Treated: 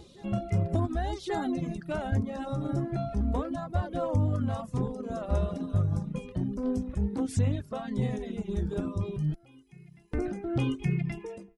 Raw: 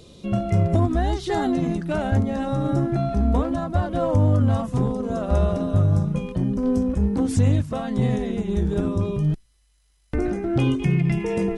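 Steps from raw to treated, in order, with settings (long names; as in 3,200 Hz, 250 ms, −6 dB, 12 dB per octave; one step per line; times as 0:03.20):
fade-out on the ending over 0.55 s
backwards echo 1,127 ms −22 dB
reverb reduction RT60 1 s
level −6.5 dB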